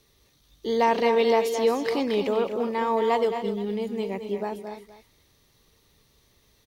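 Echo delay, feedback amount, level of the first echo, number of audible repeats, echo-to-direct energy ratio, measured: 0.219 s, no steady repeat, -9.0 dB, 3, -6.5 dB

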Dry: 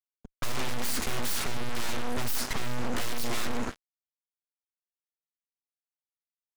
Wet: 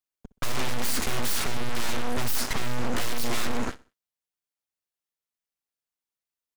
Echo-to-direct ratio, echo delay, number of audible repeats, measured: -20.0 dB, 63 ms, 2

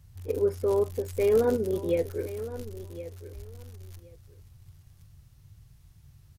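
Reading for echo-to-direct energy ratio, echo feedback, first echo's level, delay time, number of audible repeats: -14.0 dB, 17%, -14.0 dB, 1.067 s, 2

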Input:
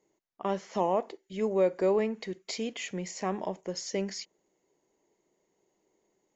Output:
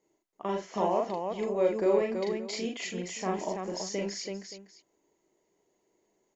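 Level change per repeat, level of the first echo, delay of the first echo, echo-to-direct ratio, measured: no steady repeat, -1.5 dB, 40 ms, 1.0 dB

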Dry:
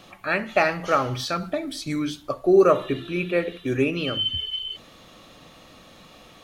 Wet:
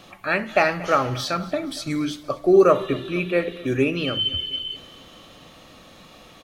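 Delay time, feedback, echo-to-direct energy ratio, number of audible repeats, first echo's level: 0.235 s, 57%, -18.5 dB, 4, -20.0 dB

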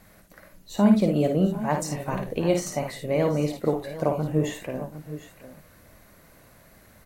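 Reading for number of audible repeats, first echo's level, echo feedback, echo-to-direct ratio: 2, -6.0 dB, no steady repeat, -5.0 dB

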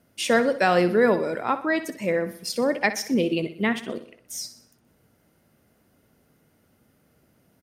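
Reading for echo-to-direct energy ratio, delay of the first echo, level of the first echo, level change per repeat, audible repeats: -12.0 dB, 62 ms, -13.0 dB, -6.0 dB, 4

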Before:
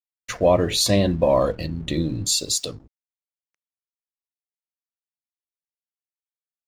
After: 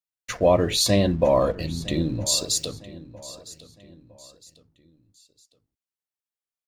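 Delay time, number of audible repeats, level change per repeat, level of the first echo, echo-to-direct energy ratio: 0.959 s, 3, -8.0 dB, -18.0 dB, -17.5 dB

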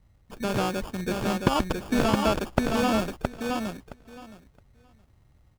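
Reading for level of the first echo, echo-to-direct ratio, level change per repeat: -4.0 dB, -4.0 dB, -16.0 dB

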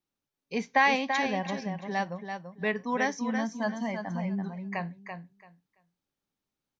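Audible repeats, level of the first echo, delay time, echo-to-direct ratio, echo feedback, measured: 2, -7.0 dB, 0.336 s, -7.0 dB, 18%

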